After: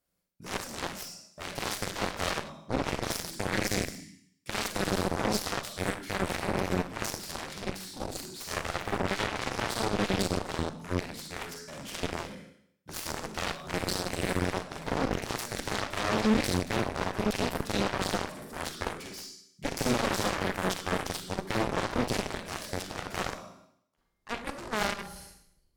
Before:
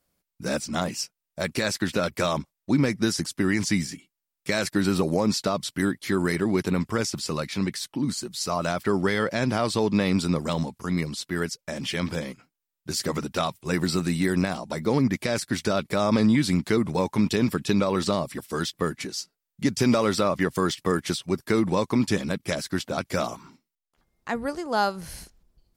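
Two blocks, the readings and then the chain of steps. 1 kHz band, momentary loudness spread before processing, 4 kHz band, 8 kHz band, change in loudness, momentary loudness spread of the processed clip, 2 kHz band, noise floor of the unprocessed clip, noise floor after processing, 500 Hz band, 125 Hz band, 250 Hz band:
-3.0 dB, 8 LU, -3.5 dB, -4.0 dB, -6.5 dB, 10 LU, -3.0 dB, -85 dBFS, -71 dBFS, -7.0 dB, -8.0 dB, -9.5 dB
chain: Schroeder reverb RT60 0.68 s, combs from 33 ms, DRR -0.5 dB; one-sided clip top -27.5 dBFS, bottom -10.5 dBFS; Chebyshev shaper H 4 -19 dB, 7 -12 dB, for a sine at -10.5 dBFS; trim -6 dB

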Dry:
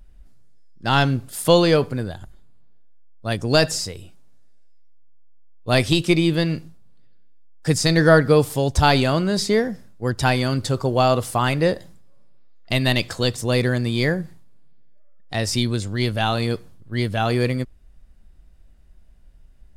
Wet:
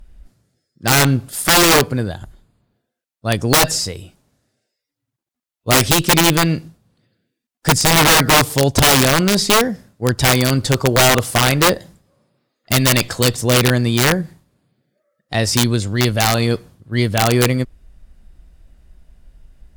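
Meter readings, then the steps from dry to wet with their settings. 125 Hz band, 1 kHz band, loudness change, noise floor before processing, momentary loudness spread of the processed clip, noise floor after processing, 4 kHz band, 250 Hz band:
+4.0 dB, +5.5 dB, +5.5 dB, -48 dBFS, 12 LU, -82 dBFS, +8.5 dB, +3.5 dB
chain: Chebyshev shaper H 7 -38 dB, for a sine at -1.5 dBFS; integer overflow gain 12 dB; trim +6.5 dB

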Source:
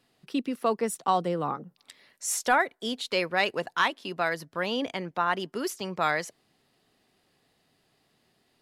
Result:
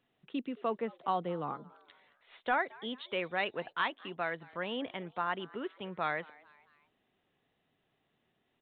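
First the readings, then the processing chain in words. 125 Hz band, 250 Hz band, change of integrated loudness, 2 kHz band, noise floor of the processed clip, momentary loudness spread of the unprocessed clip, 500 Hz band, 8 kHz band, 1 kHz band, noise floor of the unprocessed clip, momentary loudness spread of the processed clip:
-7.5 dB, -7.5 dB, -7.5 dB, -7.5 dB, -79 dBFS, 8 LU, -7.5 dB, under -40 dB, -7.5 dB, -71 dBFS, 8 LU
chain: resampled via 8 kHz; frequency-shifting echo 221 ms, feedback 48%, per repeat +140 Hz, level -23 dB; trim -7.5 dB

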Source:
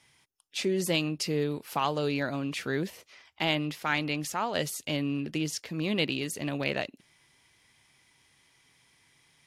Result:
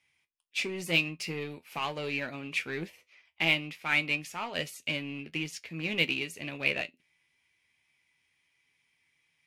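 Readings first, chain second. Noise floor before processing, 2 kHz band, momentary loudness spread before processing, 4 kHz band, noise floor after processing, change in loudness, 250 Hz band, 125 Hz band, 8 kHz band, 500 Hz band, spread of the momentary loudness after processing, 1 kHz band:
-66 dBFS, +4.0 dB, 5 LU, 0.0 dB, -76 dBFS, -1.0 dB, -7.0 dB, -6.0 dB, -7.0 dB, -6.5 dB, 10 LU, -6.0 dB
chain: de-esser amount 50%; in parallel at -7.5 dB: wavefolder -27 dBFS; on the sum: peaking EQ 2.4 kHz +12.5 dB 0.64 oct; feedback comb 83 Hz, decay 0.17 s, harmonics all, mix 70%; upward expansion 1.5:1, over -50 dBFS

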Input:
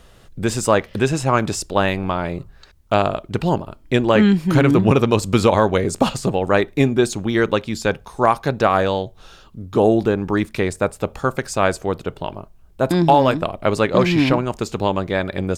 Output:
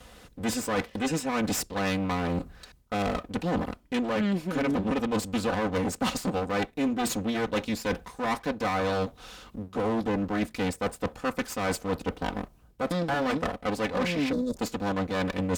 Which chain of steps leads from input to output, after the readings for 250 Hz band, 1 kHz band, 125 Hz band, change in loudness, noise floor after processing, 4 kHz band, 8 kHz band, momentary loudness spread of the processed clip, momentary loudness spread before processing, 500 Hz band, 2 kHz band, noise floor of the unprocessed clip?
-9.0 dB, -11.0 dB, -13.0 dB, -10.5 dB, -57 dBFS, -7.5 dB, -6.0 dB, 5 LU, 10 LU, -12.0 dB, -8.5 dB, -48 dBFS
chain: comb filter that takes the minimum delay 4 ms; reverse; compression, threshold -25 dBFS, peak gain reduction 14.5 dB; reverse; high-pass 42 Hz; time-frequency box 14.32–14.56 s, 660–3400 Hz -23 dB; Chebyshev shaper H 5 -21 dB, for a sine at -14 dBFS; trim -1.5 dB

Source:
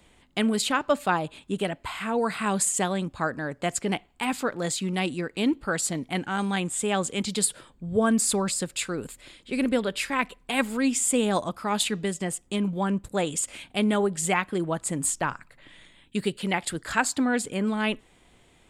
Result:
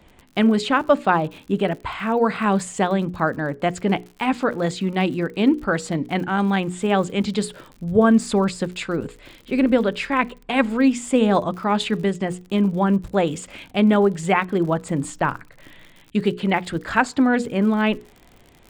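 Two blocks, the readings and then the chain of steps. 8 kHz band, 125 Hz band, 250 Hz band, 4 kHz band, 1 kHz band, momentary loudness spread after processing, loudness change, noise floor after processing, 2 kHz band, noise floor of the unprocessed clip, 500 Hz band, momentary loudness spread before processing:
-9.5 dB, +7.0 dB, +7.5 dB, +0.5 dB, +6.5 dB, 8 LU, +5.5 dB, -52 dBFS, +4.5 dB, -59 dBFS, +7.0 dB, 7 LU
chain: tape spacing loss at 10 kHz 23 dB; hum notches 60/120/180/240/300/360/420/480 Hz; crackle 75 per s -43 dBFS; trim +8.5 dB

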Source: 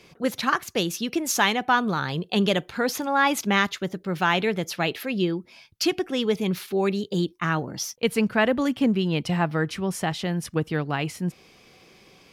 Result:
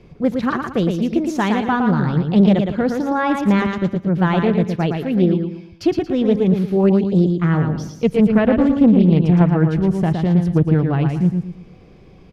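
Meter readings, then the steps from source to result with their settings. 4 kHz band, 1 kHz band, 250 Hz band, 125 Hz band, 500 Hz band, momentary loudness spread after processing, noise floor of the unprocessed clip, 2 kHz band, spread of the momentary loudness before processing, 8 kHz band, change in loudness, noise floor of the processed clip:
-6.5 dB, +1.5 dB, +11.0 dB, +13.0 dB, +6.5 dB, 7 LU, -55 dBFS, -2.0 dB, 6 LU, under -10 dB, +8.0 dB, -45 dBFS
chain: tilt EQ -4.5 dB/octave; feedback delay 114 ms, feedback 34%, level -5 dB; loudspeaker Doppler distortion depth 0.28 ms

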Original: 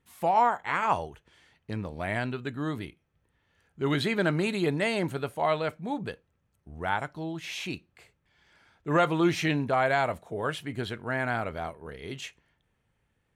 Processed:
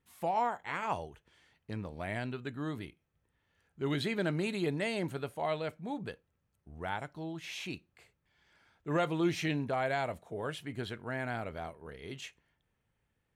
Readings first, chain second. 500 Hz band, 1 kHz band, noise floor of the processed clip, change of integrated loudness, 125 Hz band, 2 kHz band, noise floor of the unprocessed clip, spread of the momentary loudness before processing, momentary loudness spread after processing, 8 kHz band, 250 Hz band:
-6.5 dB, -8.5 dB, -80 dBFS, -7.0 dB, -5.5 dB, -8.0 dB, -75 dBFS, 14 LU, 13 LU, -5.5 dB, -5.5 dB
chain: dynamic bell 1.2 kHz, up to -5 dB, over -37 dBFS, Q 1.2; trim -5.5 dB

